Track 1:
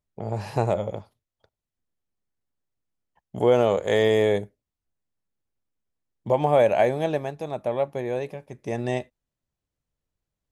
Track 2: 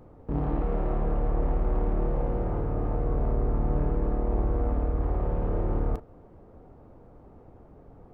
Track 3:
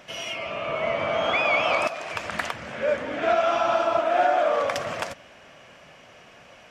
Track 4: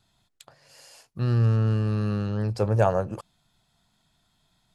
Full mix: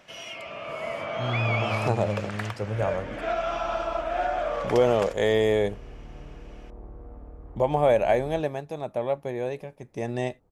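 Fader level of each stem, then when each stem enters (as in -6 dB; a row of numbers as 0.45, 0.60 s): -2.0, -17.0, -6.5, -7.0 dB; 1.30, 2.45, 0.00, 0.00 s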